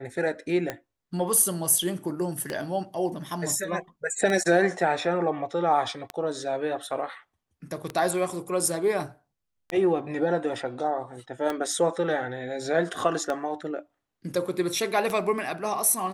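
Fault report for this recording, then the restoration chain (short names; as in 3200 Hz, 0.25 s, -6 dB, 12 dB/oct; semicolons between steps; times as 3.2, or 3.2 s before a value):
tick 33 1/3 rpm -15 dBFS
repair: de-click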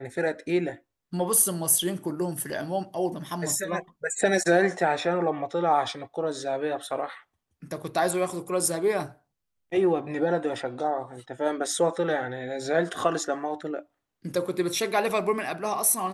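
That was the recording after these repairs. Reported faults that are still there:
none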